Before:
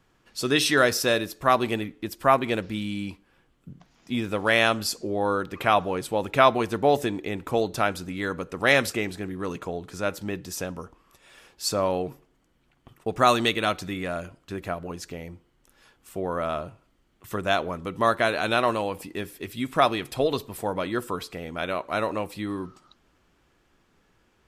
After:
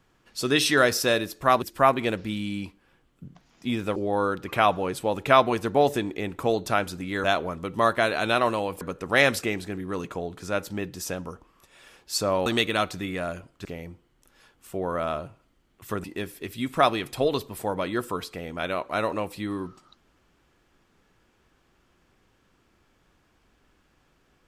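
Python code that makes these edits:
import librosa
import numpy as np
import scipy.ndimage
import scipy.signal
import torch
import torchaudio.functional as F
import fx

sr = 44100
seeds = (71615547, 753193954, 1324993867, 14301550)

y = fx.edit(x, sr, fx.cut(start_s=1.62, length_s=0.45),
    fx.cut(start_s=4.41, length_s=0.63),
    fx.cut(start_s=11.97, length_s=1.37),
    fx.cut(start_s=14.53, length_s=0.54),
    fx.move(start_s=17.46, length_s=1.57, to_s=8.32), tone=tone)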